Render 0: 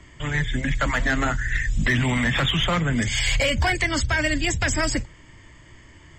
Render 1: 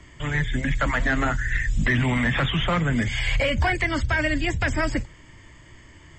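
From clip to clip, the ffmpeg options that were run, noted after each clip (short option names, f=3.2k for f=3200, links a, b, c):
-filter_complex "[0:a]acrossover=split=3000[a][b];[b]acompressor=threshold=-42dB:ratio=4:attack=1:release=60[c];[a][c]amix=inputs=2:normalize=0"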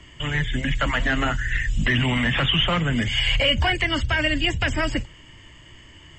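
-af "equalizer=f=2.9k:t=o:w=0.24:g=13"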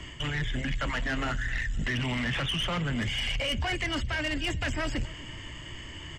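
-filter_complex "[0:a]areverse,acompressor=threshold=-29dB:ratio=16,areverse,aeval=exprs='0.0891*(cos(1*acos(clip(val(0)/0.0891,-1,1)))-cos(1*PI/2))+0.0141*(cos(5*acos(clip(val(0)/0.0891,-1,1)))-cos(5*PI/2))':c=same,asplit=2[a][b];[b]adelay=260,lowpass=f=4.6k:p=1,volume=-21dB,asplit=2[c][d];[d]adelay=260,lowpass=f=4.6k:p=1,volume=0.48,asplit=2[e][f];[f]adelay=260,lowpass=f=4.6k:p=1,volume=0.48[g];[a][c][e][g]amix=inputs=4:normalize=0"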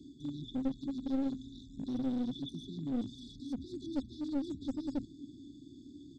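-filter_complex "[0:a]afftfilt=real='re*(1-between(b*sr/4096,430,3400))':imag='im*(1-between(b*sr/4096,430,3400))':win_size=4096:overlap=0.75,asplit=3[a][b][c];[a]bandpass=f=270:t=q:w=8,volume=0dB[d];[b]bandpass=f=2.29k:t=q:w=8,volume=-6dB[e];[c]bandpass=f=3.01k:t=q:w=8,volume=-9dB[f];[d][e][f]amix=inputs=3:normalize=0,aeval=exprs='clip(val(0),-1,0.00891)':c=same,volume=7dB"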